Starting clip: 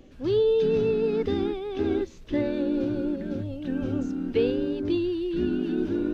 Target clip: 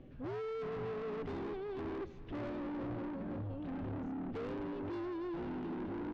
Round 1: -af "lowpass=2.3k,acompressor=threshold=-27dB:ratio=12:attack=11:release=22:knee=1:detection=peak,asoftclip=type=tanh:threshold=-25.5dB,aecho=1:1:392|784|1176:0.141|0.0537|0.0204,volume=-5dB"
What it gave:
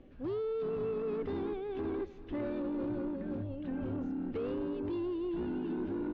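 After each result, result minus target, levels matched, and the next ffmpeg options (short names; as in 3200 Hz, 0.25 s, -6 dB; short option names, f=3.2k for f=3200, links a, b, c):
soft clip: distortion -8 dB; 125 Hz band -3.5 dB
-af "lowpass=2.3k,acompressor=threshold=-27dB:ratio=12:attack=11:release=22:knee=1:detection=peak,asoftclip=type=tanh:threshold=-33.5dB,aecho=1:1:392|784|1176:0.141|0.0537|0.0204,volume=-5dB"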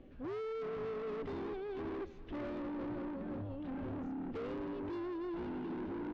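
125 Hz band -3.5 dB
-af "lowpass=2.3k,acompressor=threshold=-27dB:ratio=12:attack=11:release=22:knee=1:detection=peak,equalizer=f=130:t=o:w=0.69:g=10.5,asoftclip=type=tanh:threshold=-33.5dB,aecho=1:1:392|784|1176:0.141|0.0537|0.0204,volume=-5dB"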